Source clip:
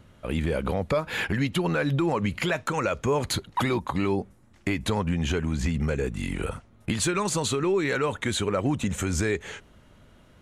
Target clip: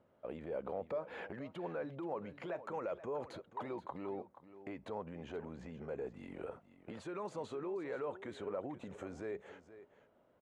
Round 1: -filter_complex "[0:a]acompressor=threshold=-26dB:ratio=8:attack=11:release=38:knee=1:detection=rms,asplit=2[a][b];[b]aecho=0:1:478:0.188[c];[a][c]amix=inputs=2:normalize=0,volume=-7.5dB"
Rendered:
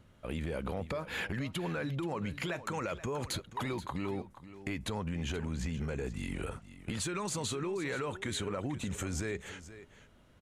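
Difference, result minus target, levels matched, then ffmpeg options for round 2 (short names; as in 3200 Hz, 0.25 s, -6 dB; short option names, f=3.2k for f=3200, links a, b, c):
500 Hz band -5.0 dB
-filter_complex "[0:a]acompressor=threshold=-26dB:ratio=8:attack=11:release=38:knee=1:detection=rms,bandpass=f=590:t=q:w=1.4:csg=0,asplit=2[a][b];[b]aecho=0:1:478:0.188[c];[a][c]amix=inputs=2:normalize=0,volume=-7.5dB"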